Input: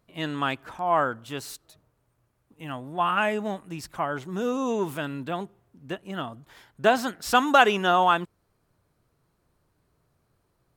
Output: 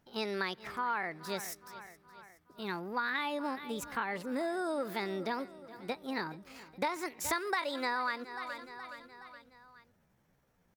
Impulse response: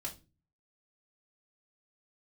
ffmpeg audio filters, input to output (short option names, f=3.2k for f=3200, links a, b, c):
-af "asetrate=60591,aresample=44100,atempo=0.727827,aecho=1:1:420|840|1260|1680:0.1|0.053|0.0281|0.0149,acompressor=threshold=-29dB:ratio=6,volume=-2dB"